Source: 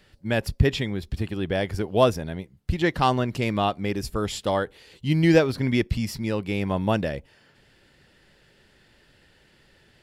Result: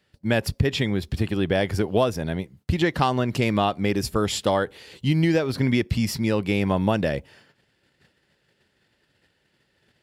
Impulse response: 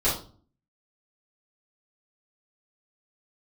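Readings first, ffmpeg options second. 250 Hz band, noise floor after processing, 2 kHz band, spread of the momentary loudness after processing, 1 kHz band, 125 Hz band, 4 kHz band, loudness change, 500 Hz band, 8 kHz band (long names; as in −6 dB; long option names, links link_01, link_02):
+2.0 dB, −69 dBFS, +1.0 dB, 6 LU, 0.0 dB, +1.5 dB, +2.5 dB, +1.0 dB, +0.5 dB, +4.5 dB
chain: -af "highpass=75,agate=range=-15dB:threshold=-56dB:ratio=16:detection=peak,acompressor=threshold=-22dB:ratio=12,volume=5.5dB"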